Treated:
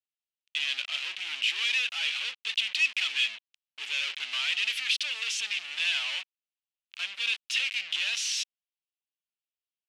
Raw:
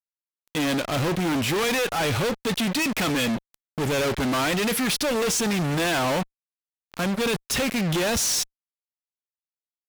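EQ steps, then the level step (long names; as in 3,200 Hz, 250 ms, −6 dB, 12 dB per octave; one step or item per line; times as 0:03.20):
high-pass with resonance 2,800 Hz, resonance Q 3.6
high-frequency loss of the air 91 metres
−4.0 dB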